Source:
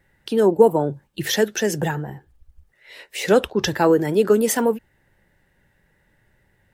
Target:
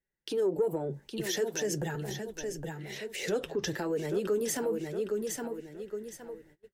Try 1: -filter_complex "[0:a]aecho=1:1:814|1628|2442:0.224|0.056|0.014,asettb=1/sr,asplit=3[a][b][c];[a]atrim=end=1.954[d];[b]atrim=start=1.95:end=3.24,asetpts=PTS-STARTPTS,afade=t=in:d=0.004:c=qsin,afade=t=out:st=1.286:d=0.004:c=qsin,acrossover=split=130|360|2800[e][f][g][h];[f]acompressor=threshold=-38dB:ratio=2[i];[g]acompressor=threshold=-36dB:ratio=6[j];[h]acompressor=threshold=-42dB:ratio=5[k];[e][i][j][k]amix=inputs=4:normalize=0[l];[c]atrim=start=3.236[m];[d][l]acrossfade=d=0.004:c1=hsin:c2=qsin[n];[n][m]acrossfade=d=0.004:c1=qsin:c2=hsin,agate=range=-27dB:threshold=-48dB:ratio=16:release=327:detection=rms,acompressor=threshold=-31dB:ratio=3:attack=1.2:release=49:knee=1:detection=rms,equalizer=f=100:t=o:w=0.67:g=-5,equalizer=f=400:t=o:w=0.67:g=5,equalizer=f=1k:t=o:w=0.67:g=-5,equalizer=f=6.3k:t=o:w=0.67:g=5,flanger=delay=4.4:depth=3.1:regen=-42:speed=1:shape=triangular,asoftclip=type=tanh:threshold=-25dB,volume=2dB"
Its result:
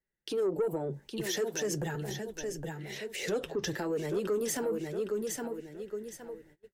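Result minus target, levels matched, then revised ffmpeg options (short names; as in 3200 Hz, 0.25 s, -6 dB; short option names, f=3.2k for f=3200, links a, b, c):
soft clip: distortion +14 dB
-filter_complex "[0:a]aecho=1:1:814|1628|2442:0.224|0.056|0.014,asettb=1/sr,asplit=3[a][b][c];[a]atrim=end=1.954[d];[b]atrim=start=1.95:end=3.24,asetpts=PTS-STARTPTS,afade=t=in:d=0.004:c=qsin,afade=t=out:st=1.286:d=0.004:c=qsin,acrossover=split=130|360|2800[e][f][g][h];[f]acompressor=threshold=-38dB:ratio=2[i];[g]acompressor=threshold=-36dB:ratio=6[j];[h]acompressor=threshold=-42dB:ratio=5[k];[e][i][j][k]amix=inputs=4:normalize=0[l];[c]atrim=start=3.236[m];[d][l]acrossfade=d=0.004:c1=hsin:c2=qsin[n];[n][m]acrossfade=d=0.004:c1=qsin:c2=hsin,agate=range=-27dB:threshold=-48dB:ratio=16:release=327:detection=rms,acompressor=threshold=-31dB:ratio=3:attack=1.2:release=49:knee=1:detection=rms,equalizer=f=100:t=o:w=0.67:g=-5,equalizer=f=400:t=o:w=0.67:g=5,equalizer=f=1k:t=o:w=0.67:g=-5,equalizer=f=6.3k:t=o:w=0.67:g=5,flanger=delay=4.4:depth=3.1:regen=-42:speed=1:shape=triangular,asoftclip=type=tanh:threshold=-17dB,volume=2dB"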